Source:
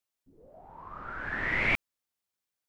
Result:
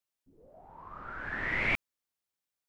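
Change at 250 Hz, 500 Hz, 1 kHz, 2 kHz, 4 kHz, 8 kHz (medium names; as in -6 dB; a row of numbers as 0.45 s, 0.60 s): -2.5 dB, -2.5 dB, -2.5 dB, -2.5 dB, -2.5 dB, no reading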